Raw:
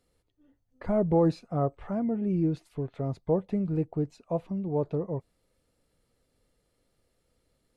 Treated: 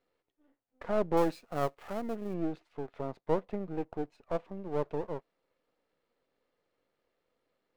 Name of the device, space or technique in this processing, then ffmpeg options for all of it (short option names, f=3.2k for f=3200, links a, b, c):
crystal radio: -filter_complex "[0:a]highpass=340,lowpass=2.8k,aeval=exprs='if(lt(val(0),0),0.251*val(0),val(0))':c=same,asettb=1/sr,asplit=3[a][b][c];[a]atrim=end=1.174[d];[b]atrim=start=1.17:end=2.34,asetpts=PTS-STARTPTS,afade=t=in:d=0.004:c=qsin,afade=t=out:st=1.166:d=0.004:c=qsin,aemphasis=mode=production:type=75fm[e];[c]atrim=start=2.336[f];[d][e]acrossfade=d=0.004:c1=hsin:c2=qsin[g];[g][f]acrossfade=d=0.004:c1=qsin:c2=hsin,volume=1.5dB"